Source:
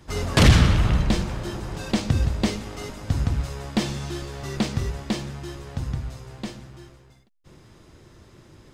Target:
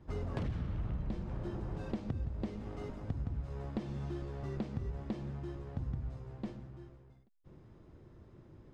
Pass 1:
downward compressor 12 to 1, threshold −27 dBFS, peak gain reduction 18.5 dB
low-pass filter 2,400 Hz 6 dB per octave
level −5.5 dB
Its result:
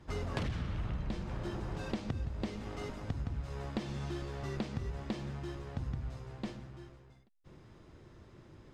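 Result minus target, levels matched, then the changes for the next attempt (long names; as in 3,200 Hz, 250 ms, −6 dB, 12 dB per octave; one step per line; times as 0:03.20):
2,000 Hz band +7.0 dB
change: low-pass filter 620 Hz 6 dB per octave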